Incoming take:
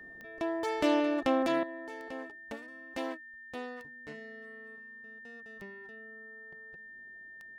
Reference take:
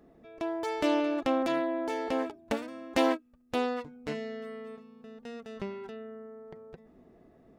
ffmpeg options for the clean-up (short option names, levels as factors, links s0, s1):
-af "adeclick=t=4,bandreject=f=1800:w=30,asetnsamples=n=441:p=0,asendcmd='1.63 volume volume 11.5dB',volume=1"